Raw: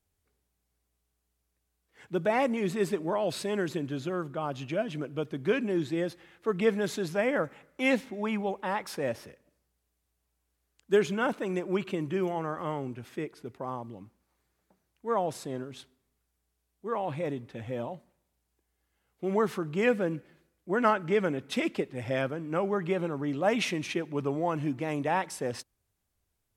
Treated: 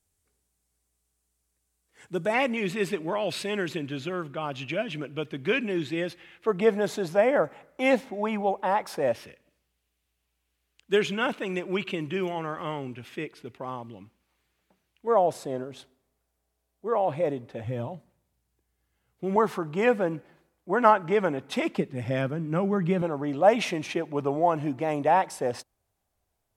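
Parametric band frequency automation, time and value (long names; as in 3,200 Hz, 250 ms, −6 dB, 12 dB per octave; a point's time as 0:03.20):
parametric band +9.5 dB 1.1 octaves
8,400 Hz
from 0:02.34 2,600 Hz
from 0:06.47 710 Hz
from 0:09.13 2,800 Hz
from 0:15.07 620 Hz
from 0:17.64 110 Hz
from 0:19.36 840 Hz
from 0:21.78 170 Hz
from 0:23.02 710 Hz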